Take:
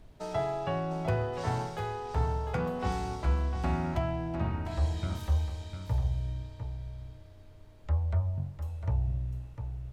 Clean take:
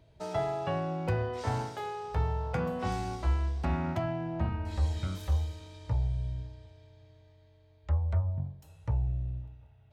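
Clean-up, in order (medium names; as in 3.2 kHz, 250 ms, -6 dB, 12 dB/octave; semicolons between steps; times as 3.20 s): noise print and reduce 11 dB; inverse comb 702 ms -8.5 dB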